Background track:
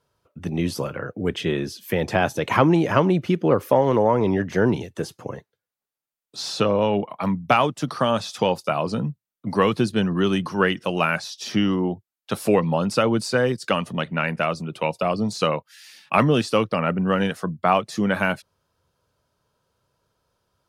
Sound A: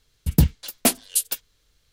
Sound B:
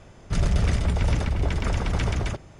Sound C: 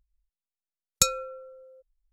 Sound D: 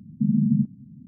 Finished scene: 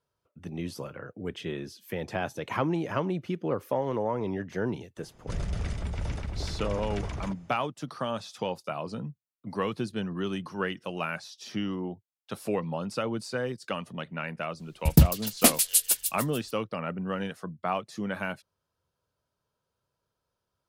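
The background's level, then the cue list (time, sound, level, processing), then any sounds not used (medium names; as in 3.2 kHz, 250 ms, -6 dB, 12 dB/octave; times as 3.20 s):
background track -11 dB
4.97 s: add B -10 dB
14.59 s: add A -0.5 dB + feedback echo behind a high-pass 147 ms, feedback 45%, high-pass 3.7 kHz, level -4 dB
not used: C, D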